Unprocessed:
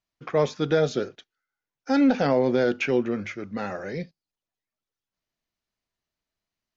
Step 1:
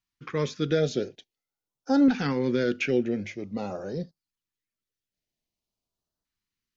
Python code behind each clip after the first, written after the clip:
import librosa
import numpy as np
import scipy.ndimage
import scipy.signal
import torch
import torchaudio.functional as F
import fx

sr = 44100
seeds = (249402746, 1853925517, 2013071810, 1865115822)

y = fx.filter_lfo_notch(x, sr, shape='saw_up', hz=0.48, low_hz=530.0, high_hz=2500.0, q=0.71)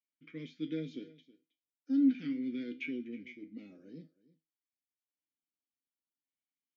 y = fx.vowel_filter(x, sr, vowel='i')
y = fx.comb_fb(y, sr, f0_hz=160.0, decay_s=0.24, harmonics='all', damping=0.0, mix_pct=80)
y = y + 10.0 ** (-20.0 / 20.0) * np.pad(y, (int(320 * sr / 1000.0), 0))[:len(y)]
y = F.gain(torch.from_numpy(y), 6.0).numpy()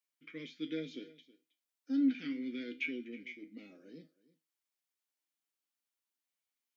y = fx.highpass(x, sr, hz=580.0, slope=6)
y = F.gain(torch.from_numpy(y), 4.5).numpy()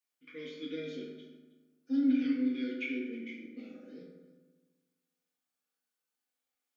y = fx.peak_eq(x, sr, hz=140.0, db=-13.0, octaves=0.39)
y = fx.rev_fdn(y, sr, rt60_s=1.4, lf_ratio=1.1, hf_ratio=0.45, size_ms=12.0, drr_db=-6.0)
y = F.gain(torch.from_numpy(y), -3.5).numpy()